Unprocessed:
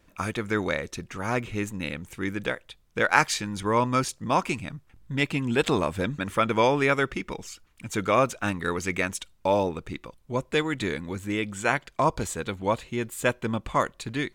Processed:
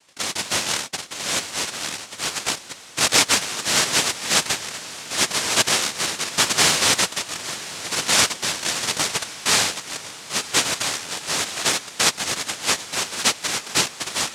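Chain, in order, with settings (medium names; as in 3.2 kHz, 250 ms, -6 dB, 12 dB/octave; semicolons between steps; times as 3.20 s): treble shelf 2.6 kHz +11 dB; noise-vocoded speech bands 1; echo that smears into a reverb 1036 ms, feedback 57%, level -15.5 dB; trim +2 dB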